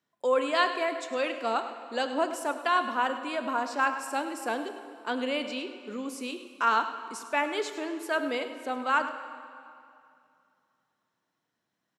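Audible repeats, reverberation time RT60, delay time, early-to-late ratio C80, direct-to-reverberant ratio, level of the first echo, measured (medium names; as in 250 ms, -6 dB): 1, 2.5 s, 103 ms, 9.0 dB, 7.5 dB, -13.5 dB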